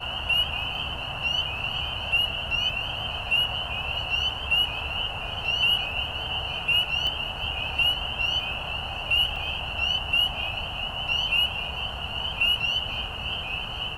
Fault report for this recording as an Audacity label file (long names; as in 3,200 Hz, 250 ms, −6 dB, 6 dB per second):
7.070000	7.070000	click −18 dBFS
9.360000	9.360000	drop-out 3.1 ms